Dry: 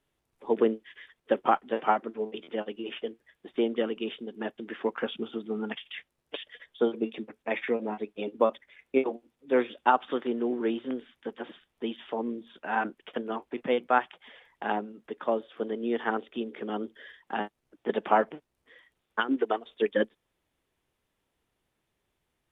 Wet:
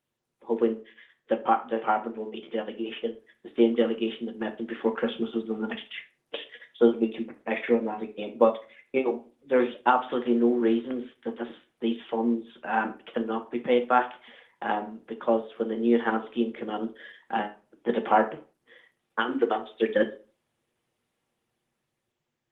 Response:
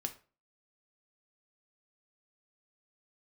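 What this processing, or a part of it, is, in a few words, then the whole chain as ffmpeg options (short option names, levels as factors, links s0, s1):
far-field microphone of a smart speaker: -filter_complex "[0:a]asettb=1/sr,asplit=3[s0][s1][s2];[s0]atrim=end=10.394[s3];[s1]atrim=start=10.39:end=11.86,asetpts=PTS-STARTPTS,afade=t=in:d=0.004:c=qsin,afade=t=out:st=1.466:d=0.004:c=qsin,adynamicequalizer=threshold=0.00141:dfrequency=2900:dqfactor=3.9:tfrequency=2900:tqfactor=3.9:attack=5:release=100:ratio=0.375:range=2:mode=cutabove:tftype=bell[s4];[s2]atrim=start=11.856[s5];[s3][s4]acrossfade=d=0.004:c1=hsin:c2=qsin[s6];[s6][s5]acrossfade=d=0.004:c1=qsin:c2=hsin[s7];[1:a]atrim=start_sample=2205[s8];[s7][s8]afir=irnorm=-1:irlink=0,highpass=120,dynaudnorm=f=500:g=7:m=2,volume=0.75" -ar 48000 -c:a libopus -b:a 20k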